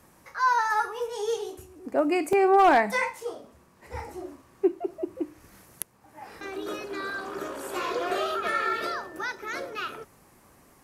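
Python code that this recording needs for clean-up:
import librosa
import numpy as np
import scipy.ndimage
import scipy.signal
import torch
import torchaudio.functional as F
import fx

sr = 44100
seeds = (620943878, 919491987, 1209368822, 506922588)

y = fx.fix_declip(x, sr, threshold_db=-12.0)
y = fx.fix_interpolate(y, sr, at_s=(2.33, 3.2, 4.0, 4.94, 6.12, 8.1), length_ms=2.0)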